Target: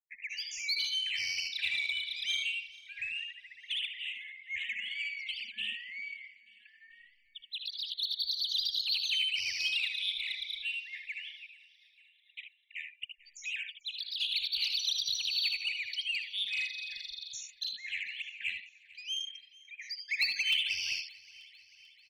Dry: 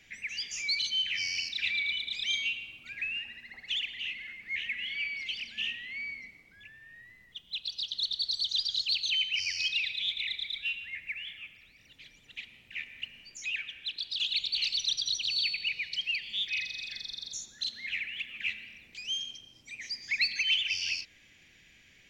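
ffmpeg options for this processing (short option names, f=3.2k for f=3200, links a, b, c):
-filter_complex "[0:a]asplit=2[a][b];[b]aecho=0:1:62|77:0.282|0.473[c];[a][c]amix=inputs=2:normalize=0,anlmdn=0.0398,afftfilt=real='re*gte(hypot(re,im),0.00794)':imag='im*gte(hypot(re,im),0.00794)':win_size=1024:overlap=0.75,aeval=exprs='0.168*(cos(1*acos(clip(val(0)/0.168,-1,1)))-cos(1*PI/2))+0.0422*(cos(3*acos(clip(val(0)/0.168,-1,1)))-cos(3*PI/2))+0.0237*(cos(5*acos(clip(val(0)/0.168,-1,1)))-cos(5*PI/2))+0.00944*(cos(7*acos(clip(val(0)/0.168,-1,1)))-cos(7*PI/2))':c=same,asplit=2[d][e];[e]aecho=0:1:442|884|1326|1768|2210:0.0794|0.0477|0.0286|0.0172|0.0103[f];[d][f]amix=inputs=2:normalize=0,volume=1dB"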